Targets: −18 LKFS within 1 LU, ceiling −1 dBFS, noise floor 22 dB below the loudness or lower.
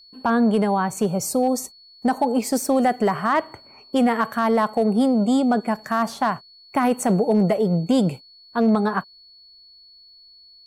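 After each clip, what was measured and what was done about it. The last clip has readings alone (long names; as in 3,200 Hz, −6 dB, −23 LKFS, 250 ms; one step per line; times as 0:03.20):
share of clipped samples 0.3%; peaks flattened at −11.5 dBFS; interfering tone 4,400 Hz; level of the tone −47 dBFS; integrated loudness −21.5 LKFS; sample peak −11.5 dBFS; target loudness −18.0 LKFS
→ clipped peaks rebuilt −11.5 dBFS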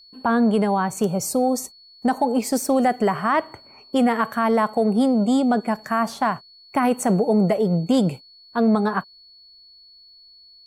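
share of clipped samples 0.0%; interfering tone 4,400 Hz; level of the tone −47 dBFS
→ notch filter 4,400 Hz, Q 30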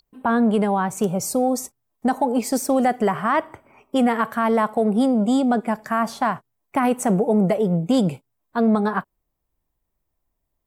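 interfering tone none found; integrated loudness −21.0 LKFS; sample peak −7.5 dBFS; target loudness −18.0 LKFS
→ level +3 dB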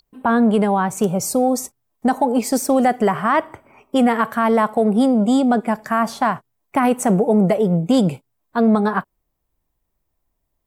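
integrated loudness −18.0 LKFS; sample peak −4.5 dBFS; background noise floor −74 dBFS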